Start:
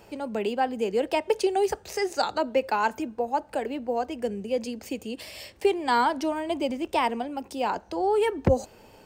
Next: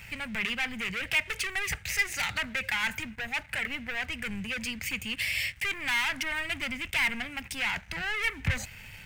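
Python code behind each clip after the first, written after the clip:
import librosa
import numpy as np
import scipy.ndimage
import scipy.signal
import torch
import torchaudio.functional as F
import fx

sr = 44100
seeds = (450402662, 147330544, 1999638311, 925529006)

y = 10.0 ** (-18.5 / 20.0) * np.tanh(x / 10.0 ** (-18.5 / 20.0))
y = fx.leveller(y, sr, passes=3)
y = fx.curve_eq(y, sr, hz=(140.0, 360.0, 1100.0, 2100.0, 4300.0, 12000.0), db=(0, -26, -14, 8, -7, -3))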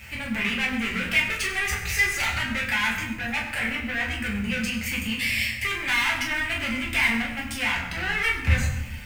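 y = fx.quant_dither(x, sr, seeds[0], bits=10, dither='none')
y = fx.rev_fdn(y, sr, rt60_s=0.95, lf_ratio=1.6, hf_ratio=0.7, size_ms=79.0, drr_db=-4.5)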